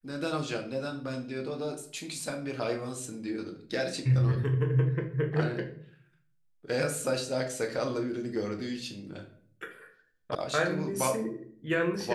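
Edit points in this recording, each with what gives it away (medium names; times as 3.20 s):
10.35 s: sound stops dead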